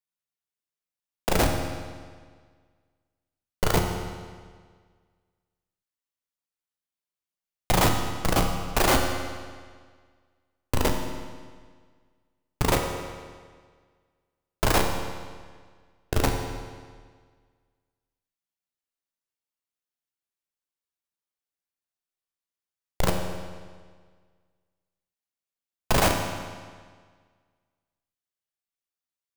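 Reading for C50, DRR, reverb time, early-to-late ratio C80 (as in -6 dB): 5.0 dB, 2.5 dB, 1.7 s, 6.0 dB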